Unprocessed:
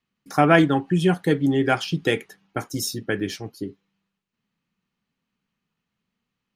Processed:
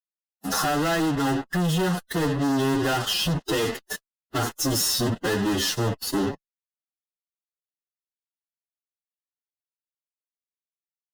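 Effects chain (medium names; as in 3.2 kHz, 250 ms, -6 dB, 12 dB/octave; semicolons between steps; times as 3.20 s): compression 8:1, threshold -29 dBFS, peak gain reduction 18.5 dB; fuzz box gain 49 dB, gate -47 dBFS; Butterworth band-stop 2.3 kHz, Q 5.8; time stretch by phase-locked vocoder 1.7×; trim -8 dB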